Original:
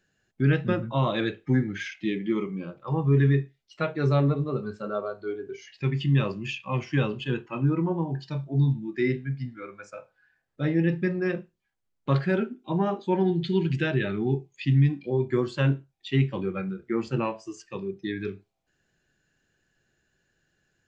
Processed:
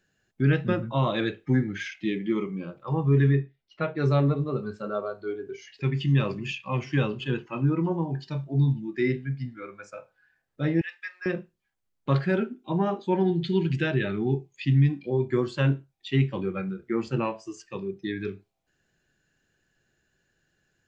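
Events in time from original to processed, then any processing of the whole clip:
3.31–3.97 air absorption 200 m
5.33–6.05 echo throw 0.46 s, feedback 65%, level -16.5 dB
10.81–11.26 HPF 1300 Hz 24 dB/oct

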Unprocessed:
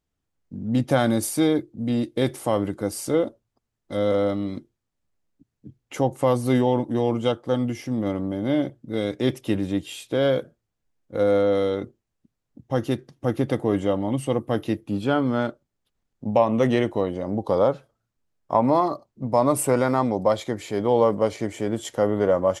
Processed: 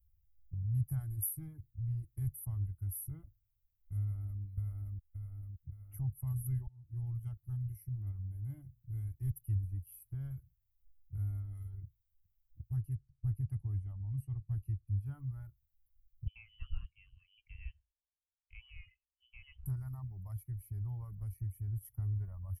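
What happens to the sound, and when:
4–4.41 echo throw 0.57 s, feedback 50%, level -1 dB
6.67–7.31 fade in equal-power, from -22 dB
12.76–15.06 air absorption 57 m
16.27–19.66 inverted band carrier 3200 Hz
whole clip: reverb removal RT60 1.3 s; inverse Chebyshev band-stop 220–7700 Hz, stop band 50 dB; dynamic EQ 100 Hz, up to -4 dB, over -57 dBFS, Q 0.77; gain +14.5 dB

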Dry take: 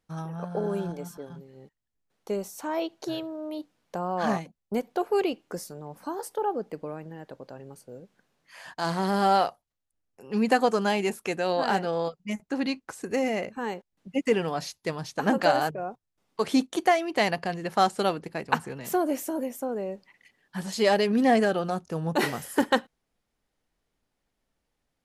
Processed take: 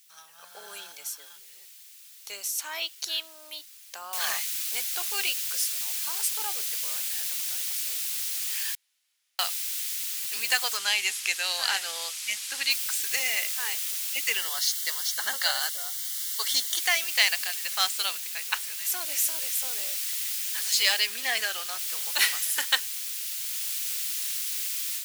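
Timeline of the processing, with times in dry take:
4.13 noise floor step -63 dB -44 dB
8.75–9.39 room tone
10.77–12.71 LPF 10000 Hz
14.37–16.8 Butterworth band-stop 2500 Hz, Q 4
21–21.79 high shelf 5300 Hz -4 dB
whole clip: AGC gain up to 8.5 dB; Chebyshev high-pass 2600 Hz, order 2; high shelf 4000 Hz +5.5 dB; gain +1 dB

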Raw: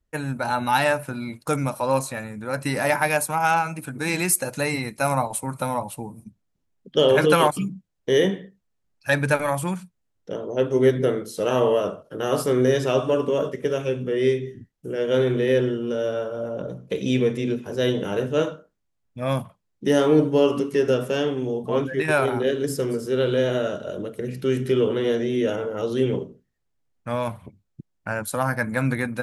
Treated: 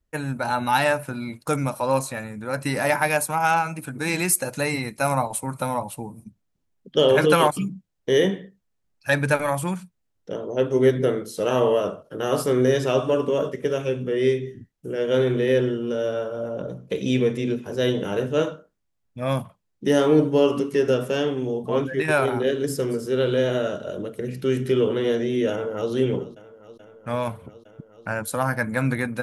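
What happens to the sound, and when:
25.5–25.91 echo throw 0.43 s, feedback 85%, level -17.5 dB

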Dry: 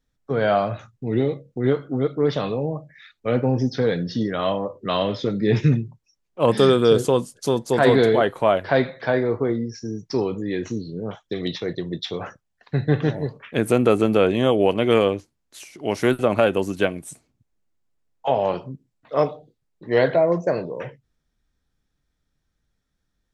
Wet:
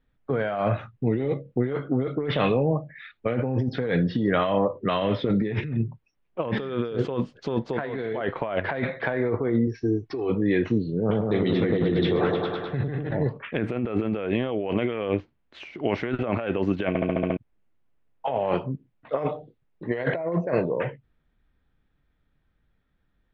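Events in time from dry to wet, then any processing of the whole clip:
2.2–2.64 bell 2800 Hz +5 dB 0.85 oct
9.67–10.3 comb 2.7 ms, depth 77%
10.99–13.11 repeats that get brighter 0.102 s, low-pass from 750 Hz, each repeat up 1 oct, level 0 dB
16.88 stutter in place 0.07 s, 7 plays
whole clip: LPF 3100 Hz 24 dB/oct; dynamic EQ 2000 Hz, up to +4 dB, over -38 dBFS, Q 1.9; negative-ratio compressor -25 dBFS, ratio -1

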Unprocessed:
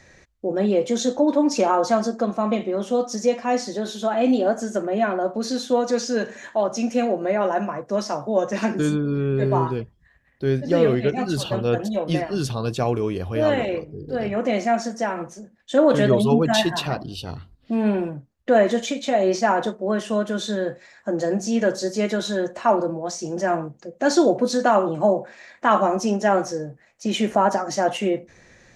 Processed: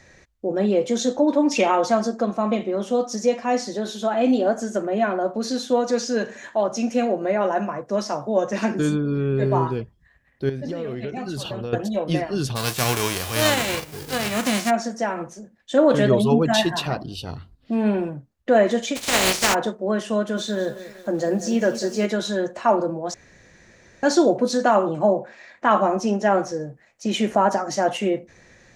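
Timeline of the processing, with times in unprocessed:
1.51–1.86 spectral gain 1800–3800 Hz +10 dB
10.49–11.73 compressor 12:1, threshold -25 dBFS
12.55–14.69 spectral whitening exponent 0.3
18.95–19.53 spectral contrast lowered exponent 0.27
20.18–22.06 lo-fi delay 0.191 s, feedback 55%, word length 7-bit, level -13 dB
23.14–24.03 room tone
24.99–26.61 high shelf 7900 Hz -9.5 dB

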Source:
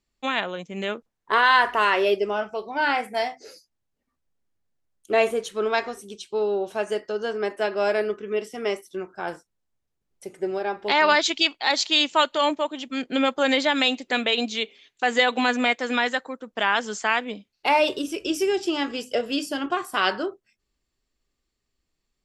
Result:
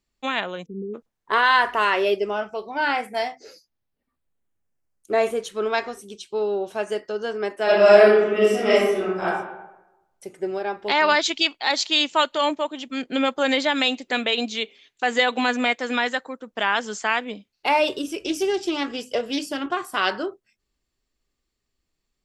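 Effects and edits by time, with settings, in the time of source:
0.66–0.95 spectral delete 510–10000 Hz
3.31–5.23 bell 11000 Hz -> 2800 Hz -12 dB 0.45 oct
7.64–9.25 reverb throw, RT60 0.96 s, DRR -9.5 dB
18.17–20.18 Doppler distortion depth 0.15 ms

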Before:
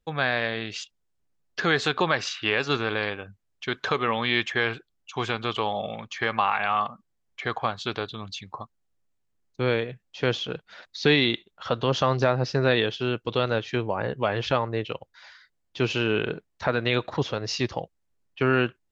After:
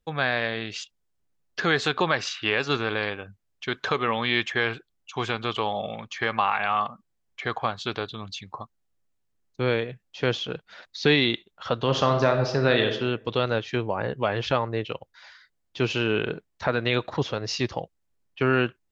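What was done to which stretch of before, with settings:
11.8–12.87 reverb throw, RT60 0.83 s, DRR 5 dB

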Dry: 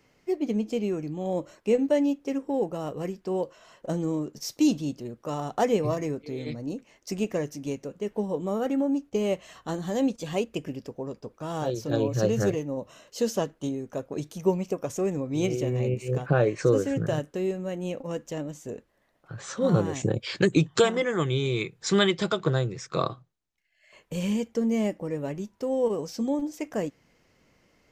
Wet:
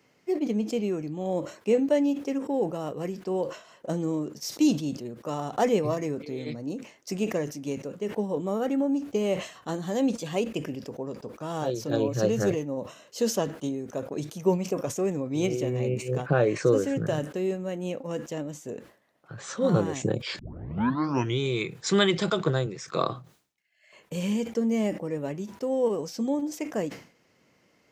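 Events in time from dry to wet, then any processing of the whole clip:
20.39 tape start 1.00 s
22.66–23.09 HPF 150 Hz
whole clip: HPF 120 Hz; sustainer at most 130 dB/s

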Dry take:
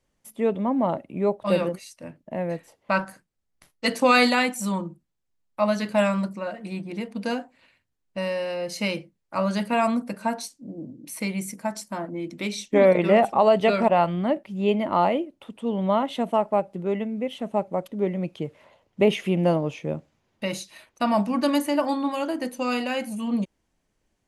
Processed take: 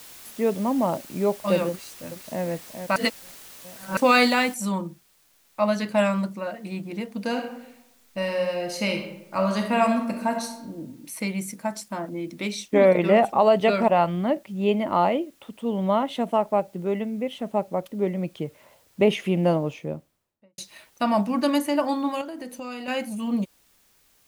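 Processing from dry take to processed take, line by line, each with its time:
1.69–2.44 echo throw 0.42 s, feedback 30%, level -7.5 dB
2.96–3.97 reverse
4.54 noise floor step -45 dB -62 dB
7.27–10.57 reverb throw, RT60 0.87 s, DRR 3.5 dB
19.57–20.58 studio fade out
22.21–22.88 compressor, threshold -32 dBFS

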